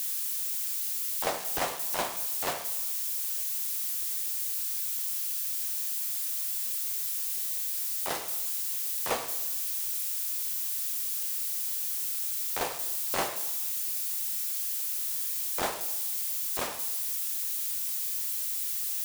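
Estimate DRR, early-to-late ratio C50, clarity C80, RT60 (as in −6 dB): 7.0 dB, 10.0 dB, 13.0 dB, 0.95 s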